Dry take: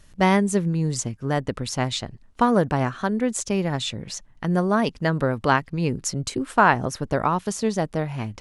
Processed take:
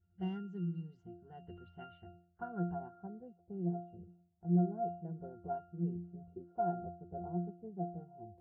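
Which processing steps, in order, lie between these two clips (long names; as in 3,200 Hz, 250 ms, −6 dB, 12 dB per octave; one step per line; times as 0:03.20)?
low-pass filter sweep 6,500 Hz → 600 Hz, 0:01.22–0:03.21
resonances in every octave F, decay 0.48 s
low-pass that shuts in the quiet parts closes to 1,500 Hz, open at −28.5 dBFS
level −3 dB
Ogg Vorbis 48 kbit/s 32,000 Hz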